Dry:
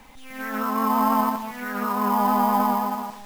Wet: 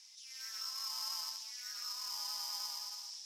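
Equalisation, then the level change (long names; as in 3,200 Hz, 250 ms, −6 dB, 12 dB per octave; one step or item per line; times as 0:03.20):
four-pole ladder band-pass 5,600 Hz, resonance 80%
high-shelf EQ 6,600 Hz −4.5 dB
+11.5 dB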